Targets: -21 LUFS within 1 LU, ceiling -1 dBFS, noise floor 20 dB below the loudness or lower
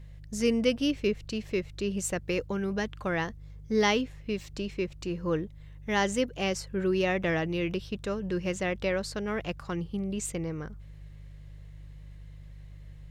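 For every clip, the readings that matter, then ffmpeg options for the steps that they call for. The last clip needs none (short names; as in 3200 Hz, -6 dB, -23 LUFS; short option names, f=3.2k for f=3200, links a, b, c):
hum 50 Hz; harmonics up to 150 Hz; hum level -43 dBFS; loudness -30.5 LUFS; peak -11.5 dBFS; loudness target -21.0 LUFS
-> -af "bandreject=f=50:t=h:w=4,bandreject=f=100:t=h:w=4,bandreject=f=150:t=h:w=4"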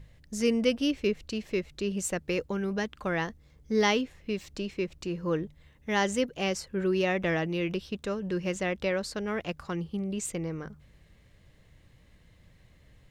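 hum none; loudness -30.5 LUFS; peak -11.5 dBFS; loudness target -21.0 LUFS
-> -af "volume=9.5dB"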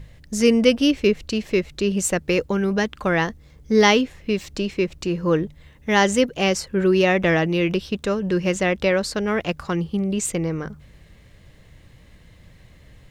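loudness -21.0 LUFS; peak -2.0 dBFS; noise floor -50 dBFS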